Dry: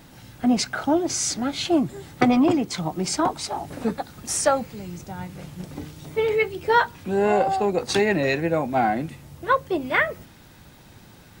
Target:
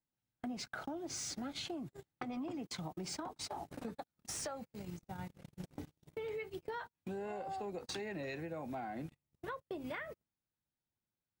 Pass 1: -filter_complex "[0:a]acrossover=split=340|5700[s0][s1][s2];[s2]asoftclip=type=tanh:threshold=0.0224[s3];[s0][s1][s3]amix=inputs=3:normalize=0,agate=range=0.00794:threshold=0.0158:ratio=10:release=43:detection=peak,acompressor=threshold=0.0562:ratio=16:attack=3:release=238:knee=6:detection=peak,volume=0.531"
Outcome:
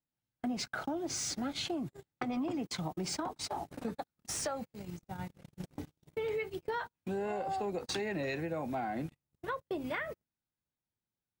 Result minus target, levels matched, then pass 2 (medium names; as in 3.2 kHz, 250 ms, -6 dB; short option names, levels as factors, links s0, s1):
compression: peak gain reduction -6.5 dB
-filter_complex "[0:a]acrossover=split=340|5700[s0][s1][s2];[s2]asoftclip=type=tanh:threshold=0.0224[s3];[s0][s1][s3]amix=inputs=3:normalize=0,agate=range=0.00794:threshold=0.0158:ratio=10:release=43:detection=peak,acompressor=threshold=0.0251:ratio=16:attack=3:release=238:knee=6:detection=peak,volume=0.531"